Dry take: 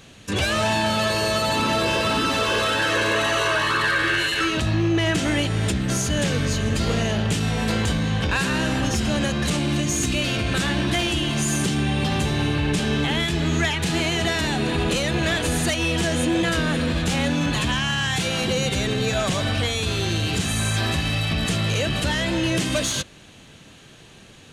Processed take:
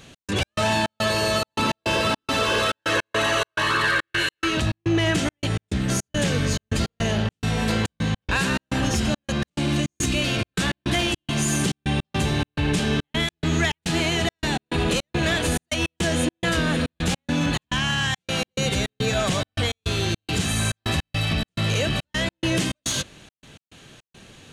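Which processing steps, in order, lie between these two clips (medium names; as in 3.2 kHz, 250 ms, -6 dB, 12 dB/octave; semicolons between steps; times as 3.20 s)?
trance gate "x.x.xx.xx" 105 bpm -60 dB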